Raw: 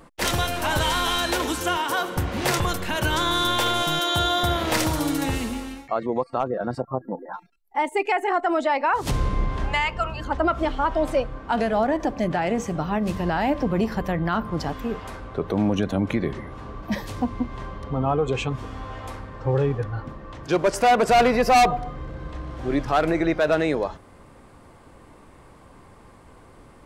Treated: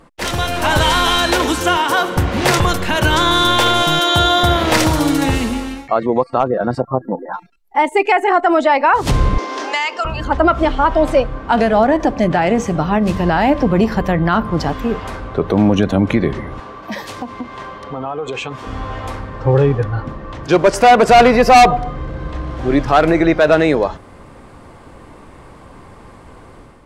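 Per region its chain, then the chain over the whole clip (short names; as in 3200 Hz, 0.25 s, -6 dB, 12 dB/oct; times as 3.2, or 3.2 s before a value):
9.38–10.05 steep high-pass 270 Hz 48 dB/oct + bell 5700 Hz +13.5 dB 0.84 oct + compressor 2:1, threshold -27 dBFS
16.6–18.67 HPF 550 Hz 6 dB/oct + compressor 4:1, threshold -30 dBFS
whole clip: AGC gain up to 7.5 dB; high shelf 10000 Hz -8.5 dB; gain +2 dB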